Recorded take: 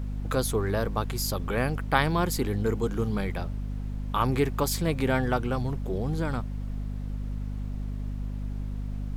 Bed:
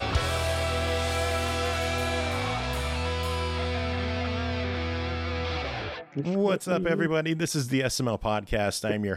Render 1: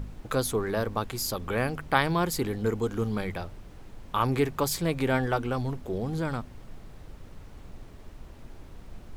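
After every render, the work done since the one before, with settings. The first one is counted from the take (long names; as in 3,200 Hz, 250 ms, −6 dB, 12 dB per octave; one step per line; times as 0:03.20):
hum removal 50 Hz, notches 5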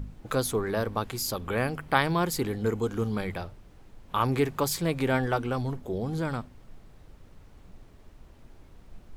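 noise reduction from a noise print 6 dB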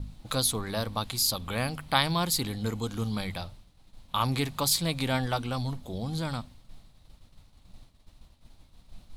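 downward expander −44 dBFS
graphic EQ with 15 bands 400 Hz −11 dB, 1,600 Hz −5 dB, 4,000 Hz +11 dB, 10,000 Hz +7 dB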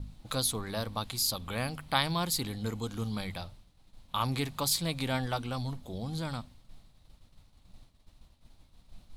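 level −3.5 dB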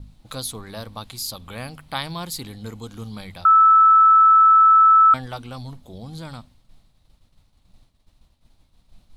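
0:03.45–0:05.14: beep over 1,310 Hz −9 dBFS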